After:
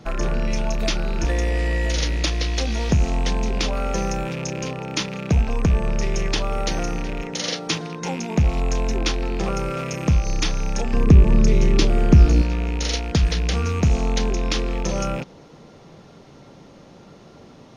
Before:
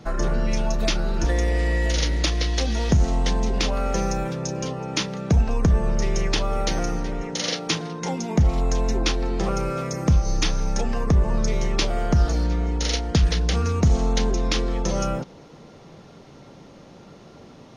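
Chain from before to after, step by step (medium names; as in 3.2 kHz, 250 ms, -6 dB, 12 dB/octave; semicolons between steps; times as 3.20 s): rattle on loud lows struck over -30 dBFS, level -24 dBFS; 10.93–12.42 s: resonant low shelf 470 Hz +7 dB, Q 1.5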